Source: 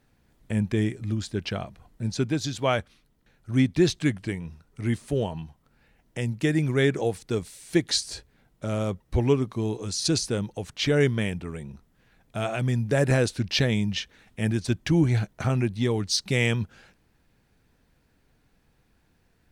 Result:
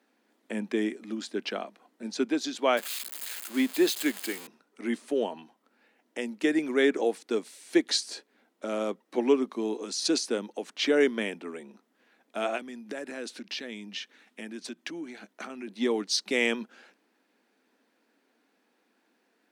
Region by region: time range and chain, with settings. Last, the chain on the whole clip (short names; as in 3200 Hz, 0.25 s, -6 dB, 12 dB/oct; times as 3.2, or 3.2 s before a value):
2.77–4.47 switching spikes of -21 dBFS + HPF 280 Hz 6 dB/oct + notch 5700 Hz, Q 6.5
12.57–15.68 bell 570 Hz -4.5 dB 1.8 oct + compressor, threshold -30 dBFS
whole clip: steep high-pass 230 Hz 48 dB/oct; high shelf 6500 Hz -6.5 dB